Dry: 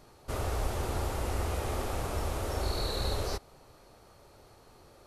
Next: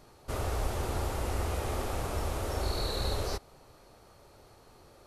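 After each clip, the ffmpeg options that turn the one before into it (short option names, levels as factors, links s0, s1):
-af anull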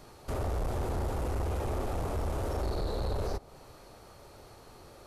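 -filter_complex "[0:a]acrossover=split=1000[s0][s1];[s1]acompressor=threshold=0.00316:ratio=5[s2];[s0][s2]amix=inputs=2:normalize=0,asoftclip=type=tanh:threshold=0.0266,volume=1.68"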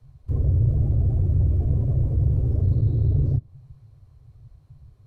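-af "bass=f=250:g=13,treble=f=4000:g=-3,afreqshift=-150,afftdn=nr=18:nf=-29"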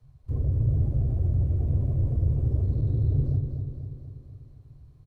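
-af "aecho=1:1:244|488|732|976|1220|1464|1708|1952:0.473|0.274|0.159|0.0923|0.0535|0.0311|0.018|0.0104,volume=0.596"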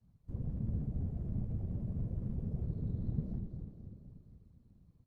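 -af "afftfilt=real='hypot(re,im)*cos(2*PI*random(0))':imag='hypot(re,im)*sin(2*PI*random(1))':win_size=512:overlap=0.75,volume=0.473"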